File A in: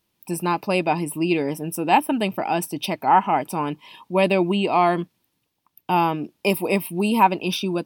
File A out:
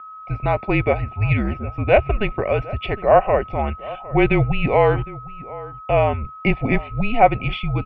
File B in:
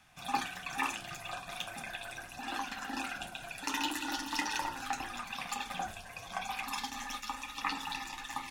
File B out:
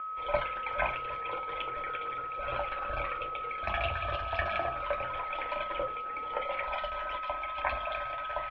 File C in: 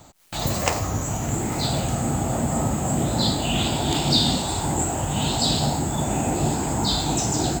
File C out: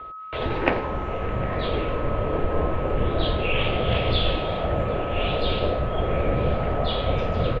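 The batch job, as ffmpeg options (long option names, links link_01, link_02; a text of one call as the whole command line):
ffmpeg -i in.wav -filter_complex "[0:a]aeval=exprs='val(0)+0.0126*sin(2*PI*1500*n/s)':channel_layout=same,highpass=frequency=180:width_type=q:width=0.5412,highpass=frequency=180:width_type=q:width=1.307,lowpass=frequency=3200:width_type=q:width=0.5176,lowpass=frequency=3200:width_type=q:width=0.7071,lowpass=frequency=3200:width_type=q:width=1.932,afreqshift=-220,asplit=2[link_01][link_02];[link_02]adelay=758,volume=-18dB,highshelf=frequency=4000:gain=-17.1[link_03];[link_01][link_03]amix=inputs=2:normalize=0,volume=3dB" out.wav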